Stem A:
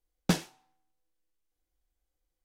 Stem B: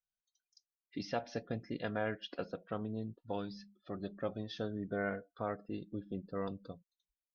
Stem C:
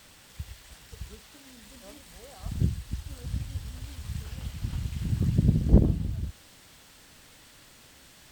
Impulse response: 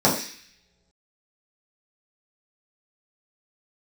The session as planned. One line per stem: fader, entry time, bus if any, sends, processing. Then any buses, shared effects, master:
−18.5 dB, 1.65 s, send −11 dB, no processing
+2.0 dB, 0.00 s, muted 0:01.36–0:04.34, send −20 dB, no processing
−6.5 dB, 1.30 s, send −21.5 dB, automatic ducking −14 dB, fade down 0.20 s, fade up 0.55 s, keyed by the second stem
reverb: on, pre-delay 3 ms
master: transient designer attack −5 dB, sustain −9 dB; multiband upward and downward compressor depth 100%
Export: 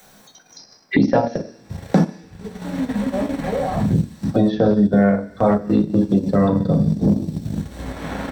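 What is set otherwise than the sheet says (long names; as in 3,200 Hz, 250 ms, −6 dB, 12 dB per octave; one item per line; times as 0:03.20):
stem A −18.5 dB → −8.0 dB
stem B +2.0 dB → +13.5 dB
reverb return +8.0 dB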